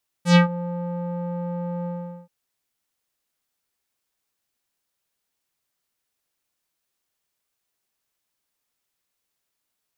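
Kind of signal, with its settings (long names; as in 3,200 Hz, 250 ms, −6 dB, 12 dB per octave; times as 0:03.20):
subtractive voice square F3 12 dB per octave, low-pass 730 Hz, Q 2, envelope 4 octaves, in 0.24 s, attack 105 ms, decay 0.12 s, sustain −18 dB, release 0.42 s, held 1.61 s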